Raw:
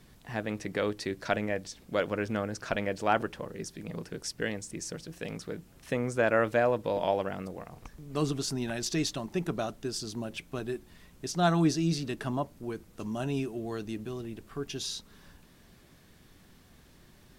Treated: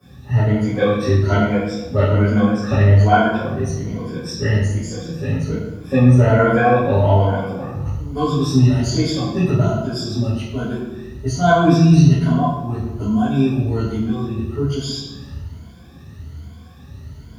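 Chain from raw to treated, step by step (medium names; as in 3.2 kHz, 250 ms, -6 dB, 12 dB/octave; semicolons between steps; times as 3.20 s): drifting ripple filter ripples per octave 1.8, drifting +1.2 Hz, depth 21 dB; bit crusher 10-bit; reverberation RT60 1.1 s, pre-delay 3 ms, DRR -14.5 dB; trim -14.5 dB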